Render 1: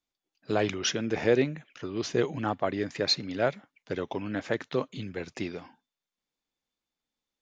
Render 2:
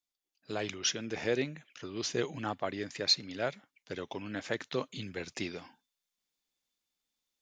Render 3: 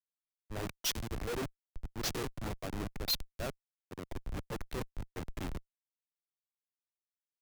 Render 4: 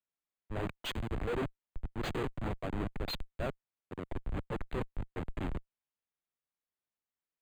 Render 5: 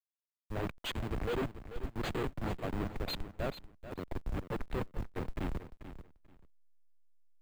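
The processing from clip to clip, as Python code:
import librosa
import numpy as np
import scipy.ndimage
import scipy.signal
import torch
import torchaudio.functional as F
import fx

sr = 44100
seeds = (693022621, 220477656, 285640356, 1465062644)

y1 = fx.high_shelf(x, sr, hz=2500.0, db=10.5)
y1 = fx.rider(y1, sr, range_db=3, speed_s=2.0)
y1 = y1 * 10.0 ** (-7.5 / 20.0)
y2 = fx.schmitt(y1, sr, flips_db=-33.5)
y2 = fx.band_widen(y2, sr, depth_pct=100)
y2 = y2 * 10.0 ** (1.0 / 20.0)
y3 = np.convolve(y2, np.full(8, 1.0 / 8))[:len(y2)]
y3 = y3 * 10.0 ** (3.0 / 20.0)
y4 = fx.delta_hold(y3, sr, step_db=-53.5)
y4 = fx.echo_feedback(y4, sr, ms=438, feedback_pct=19, wet_db=-12.0)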